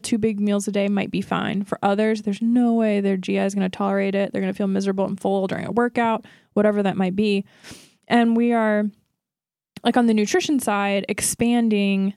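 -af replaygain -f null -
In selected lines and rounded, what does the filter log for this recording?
track_gain = +2.4 dB
track_peak = 0.418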